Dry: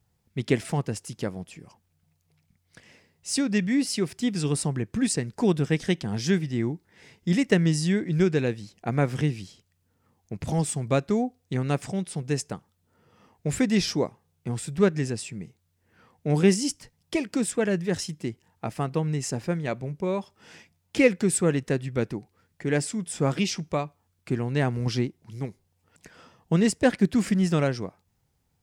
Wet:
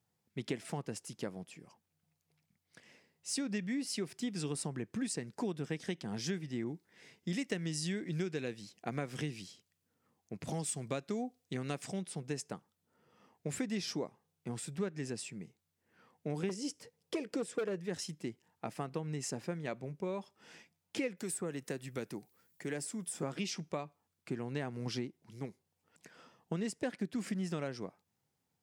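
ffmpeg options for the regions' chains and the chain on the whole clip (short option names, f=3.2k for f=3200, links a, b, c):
-filter_complex "[0:a]asettb=1/sr,asplit=3[a][b][c];[a]atrim=end=6.644[d];[b]atrim=start=6.64:end=11.99,asetpts=PTS-STARTPTS,afade=t=in:d=0.004:c=qsin,afade=t=out:st=5.346:d=0.004:c=qsin,bandreject=f=880:w=19,adynamicequalizer=threshold=0.00708:dfrequency=2100:dqfactor=0.7:tfrequency=2100:tqfactor=0.7:attack=5:release=100:ratio=0.375:range=2.5:mode=boostabove:tftype=highshelf[e];[c]atrim=start=11.986[f];[d][e]acrossfade=d=0.004:c1=hsin:c2=qsin[g];[g][f]acrossfade=d=0.004:c1=qsin:c2=hsin,asettb=1/sr,asplit=3[h][i][j];[h]atrim=end=16.494[k];[i]atrim=start=16.49:end=17.8,asetpts=PTS-STARTPTS,afade=t=in:d=0.004:c=qsin,afade=t=out:st=1.306:d=0.004:c=qsin,acrossover=split=7400[l][m];[m]acompressor=threshold=-40dB:ratio=4:attack=1:release=60[n];[l][n]amix=inputs=2:normalize=0,equalizer=f=470:t=o:w=0.47:g=14,asoftclip=type=hard:threshold=-15dB[o];[j]atrim=start=17.796[p];[k][o]acrossfade=d=0.004:c1=hsin:c2=qsin[q];[q][p]acrossfade=d=0.004:c1=qsin:c2=hsin,asettb=1/sr,asplit=3[r][s][t];[r]atrim=end=21.174[u];[s]atrim=start=21.17:end=23.23,asetpts=PTS-STARTPTS,afade=t=in:d=0.004:c=qsin,afade=t=out:st=2.056:d=0.004:c=qsin,acrossover=split=500|1700[v][w][x];[v]acompressor=threshold=-29dB:ratio=4[y];[w]acompressor=threshold=-35dB:ratio=4[z];[x]acompressor=threshold=-43dB:ratio=4[aa];[y][z][aa]amix=inputs=3:normalize=0,aemphasis=mode=production:type=50fm[ab];[t]atrim=start=23.226[ac];[u][ab]acrossfade=d=0.004:c1=hsin:c2=qsin[ad];[ad][ac]acrossfade=d=0.004:c1=qsin:c2=hsin,highpass=160,acompressor=threshold=-26dB:ratio=6,volume=-7dB"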